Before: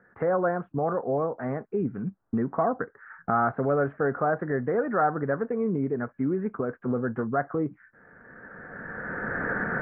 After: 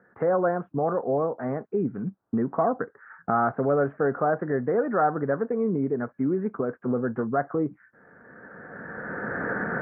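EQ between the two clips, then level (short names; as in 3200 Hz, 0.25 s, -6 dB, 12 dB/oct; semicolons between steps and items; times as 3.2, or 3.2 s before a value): HPF 150 Hz 6 dB/oct; high shelf 2100 Hz -11.5 dB; +3.0 dB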